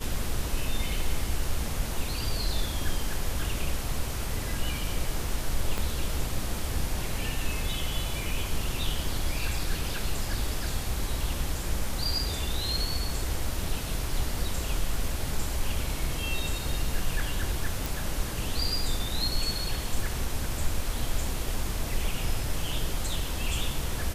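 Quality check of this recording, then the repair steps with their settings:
5.78 s: pop
17.86 s: pop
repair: de-click

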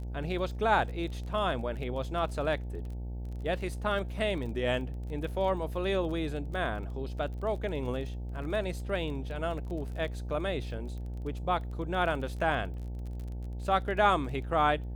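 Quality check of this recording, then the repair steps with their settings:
buzz 60 Hz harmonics 15 -37 dBFS
crackle 25 per s -39 dBFS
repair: de-click; de-hum 60 Hz, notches 15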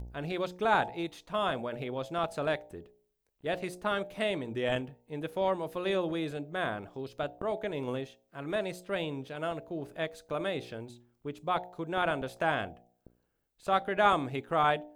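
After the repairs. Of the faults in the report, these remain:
nothing left

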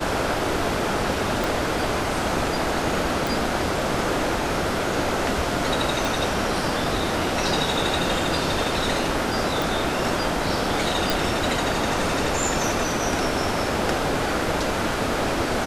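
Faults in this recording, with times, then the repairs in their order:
1.44 s: pop
3.27 s: pop
6.05 s: pop
9.62 s: pop
11.10 s: pop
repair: de-click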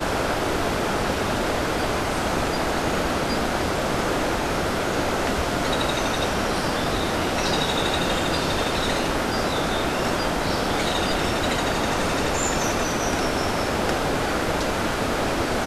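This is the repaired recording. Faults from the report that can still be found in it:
1.44 s: pop

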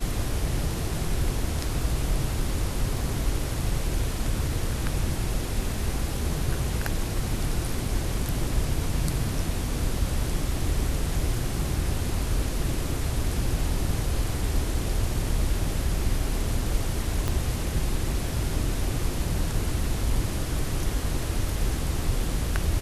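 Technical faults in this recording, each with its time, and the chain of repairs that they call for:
17.28 s: pop -13 dBFS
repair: de-click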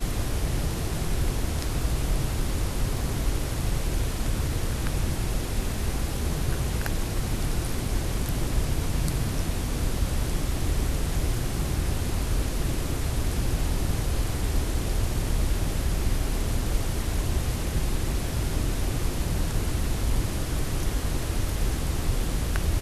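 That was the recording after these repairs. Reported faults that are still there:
17.28 s: pop

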